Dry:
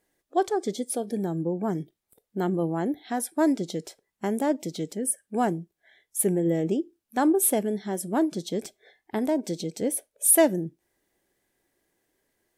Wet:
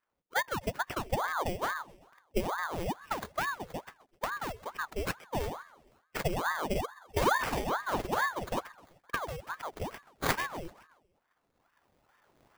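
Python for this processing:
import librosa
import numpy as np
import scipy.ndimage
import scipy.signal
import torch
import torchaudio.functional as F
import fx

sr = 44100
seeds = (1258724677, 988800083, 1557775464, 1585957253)

p1 = fx.recorder_agc(x, sr, target_db=-17.0, rise_db_per_s=9.7, max_gain_db=30)
p2 = scipy.signal.sosfilt(scipy.signal.butter(2, 9900.0, 'lowpass', fs=sr, output='sos'), p1)
p3 = fx.bass_treble(p2, sr, bass_db=3, treble_db=5)
p4 = fx.transient(p3, sr, attack_db=7, sustain_db=-6)
p5 = fx.phaser_stages(p4, sr, stages=8, low_hz=570.0, high_hz=2000.0, hz=0.18, feedback_pct=25)
p6 = fx.sample_hold(p5, sr, seeds[0], rate_hz=2700.0, jitter_pct=0)
p7 = fx.doubler(p6, sr, ms=47.0, db=-3.0, at=(6.73, 8.59), fade=0.02)
p8 = p7 + fx.echo_feedback(p7, sr, ms=129, feedback_pct=57, wet_db=-20.5, dry=0)
p9 = fx.ring_lfo(p8, sr, carrier_hz=800.0, swing_pct=80, hz=2.3)
y = F.gain(torch.from_numpy(p9), -7.5).numpy()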